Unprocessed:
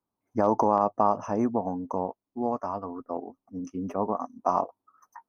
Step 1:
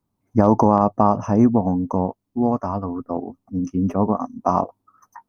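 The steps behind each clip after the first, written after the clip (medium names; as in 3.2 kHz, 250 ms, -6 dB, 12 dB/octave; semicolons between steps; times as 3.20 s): tone controls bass +13 dB, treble +1 dB; trim +5 dB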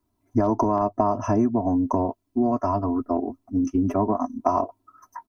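comb 3 ms, depth 99%; compression 5:1, threshold -18 dBFS, peak gain reduction 10.5 dB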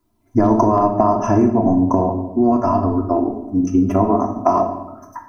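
simulated room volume 380 m³, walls mixed, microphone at 0.79 m; trim +5.5 dB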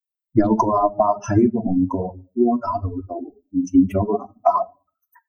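expander on every frequency bin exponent 3; trim +4 dB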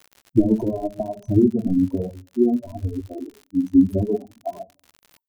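inverse Chebyshev band-stop 1.3–4.1 kHz, stop band 60 dB; crackle 95 per s -34 dBFS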